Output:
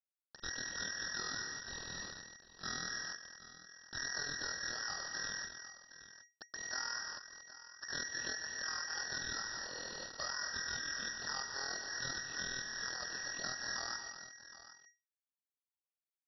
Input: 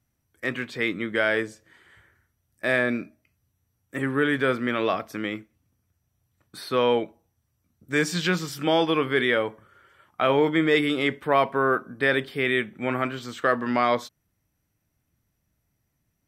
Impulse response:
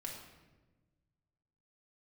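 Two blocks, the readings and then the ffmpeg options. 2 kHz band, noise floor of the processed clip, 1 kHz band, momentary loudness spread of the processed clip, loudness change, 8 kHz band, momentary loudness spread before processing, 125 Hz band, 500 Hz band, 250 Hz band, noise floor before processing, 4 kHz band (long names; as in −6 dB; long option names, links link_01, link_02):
−13.0 dB, below −85 dBFS, −19.5 dB, 14 LU, −15.5 dB, +3.0 dB, 10 LU, −22.5 dB, −29.5 dB, −29.0 dB, −76 dBFS, −6.5 dB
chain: -af "aeval=exprs='val(0)+0.5*0.0335*sgn(val(0))':channel_layout=same,acrusher=bits=3:dc=4:mix=0:aa=0.000001,aemphasis=mode=reproduction:type=75fm,acompressor=threshold=-26dB:ratio=6,tremolo=f=41:d=0.889,asoftclip=type=tanh:threshold=-21dB,lowpass=frequency=3200:width_type=q:width=0.5098,lowpass=frequency=3200:width_type=q:width=0.6013,lowpass=frequency=3200:width_type=q:width=0.9,lowpass=frequency=3200:width_type=q:width=2.563,afreqshift=-3800,highpass=frequency=700:poles=1,aecho=1:1:131|232|766:0.15|0.316|0.178,aeval=exprs='val(0)*sin(2*PI*1900*n/s)':channel_layout=same,volume=-2dB"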